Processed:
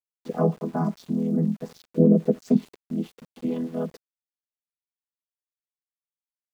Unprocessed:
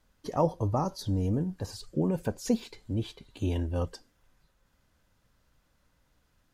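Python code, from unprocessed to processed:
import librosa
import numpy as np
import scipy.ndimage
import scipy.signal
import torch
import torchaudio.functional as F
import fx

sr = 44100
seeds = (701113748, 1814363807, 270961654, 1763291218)

y = fx.chord_vocoder(x, sr, chord='major triad', root=52)
y = fx.graphic_eq(y, sr, hz=(250, 500, 1000, 2000), db=(4, 10, -10, -11), at=(1.96, 2.41))
y = np.where(np.abs(y) >= 10.0 ** (-52.0 / 20.0), y, 0.0)
y = F.gain(torch.from_numpy(y), 6.0).numpy()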